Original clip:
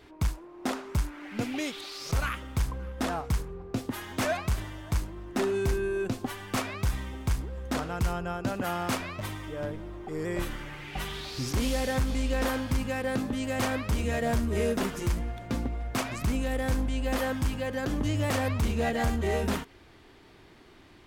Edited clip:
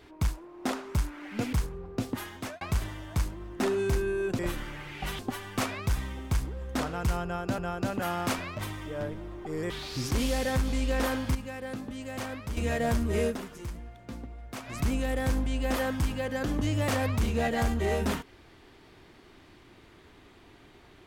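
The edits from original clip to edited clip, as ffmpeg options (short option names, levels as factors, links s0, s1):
-filter_complex "[0:a]asplit=11[s0][s1][s2][s3][s4][s5][s6][s7][s8][s9][s10];[s0]atrim=end=1.532[s11];[s1]atrim=start=3.288:end=4.37,asetpts=PTS-STARTPTS,afade=t=out:st=0.672:d=0.41[s12];[s2]atrim=start=4.37:end=6.152,asetpts=PTS-STARTPTS,afade=t=in:d=0.004:c=hsin[s13];[s3]atrim=start=10.318:end=11.122[s14];[s4]atrim=start=6.148:end=8.542[s15];[s5]atrim=start=8.198:end=10.322[s16];[s6]atrim=start=11.118:end=12.772[s17];[s7]atrim=start=12.768:end=13.992,asetpts=PTS-STARTPTS,volume=0.422[s18];[s8]atrim=start=13.988:end=14.81,asetpts=PTS-STARTPTS,afade=t=out:st=0.692:d=0.13:silence=0.316228[s19];[s9]atrim=start=14.81:end=16.07,asetpts=PTS-STARTPTS,volume=0.316[s20];[s10]atrim=start=16.07,asetpts=PTS-STARTPTS,afade=t=in:d=0.13:silence=0.316228[s21];[s12][s13]concat=n=2:v=0:a=1[s22];[s11][s22]acrossfade=d=0.004:c1=hsin:c2=hsin[s23];[s23][s14]acrossfade=d=0.004:c1=hsin:c2=hsin[s24];[s24][s15]acrossfade=d=0.004:c1=hsin:c2=hsin[s25];[s25][s16]acrossfade=d=0.004:c1=hsin:c2=hsin[s26];[s26][s17]acrossfade=d=0.004:c1=hsin:c2=hsin[s27];[s27][s18]acrossfade=d=0.004:c1=hsin:c2=hsin[s28];[s19][s20][s21]concat=n=3:v=0:a=1[s29];[s28][s29]acrossfade=d=0.004:c1=hsin:c2=hsin"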